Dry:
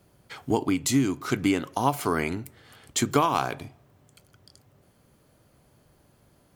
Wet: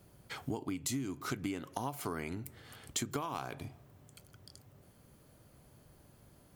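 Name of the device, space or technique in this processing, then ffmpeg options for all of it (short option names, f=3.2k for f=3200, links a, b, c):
ASMR close-microphone chain: -af "lowshelf=f=210:g=4,acompressor=threshold=-33dB:ratio=5,highshelf=f=9.1k:g=5.5,volume=-2.5dB"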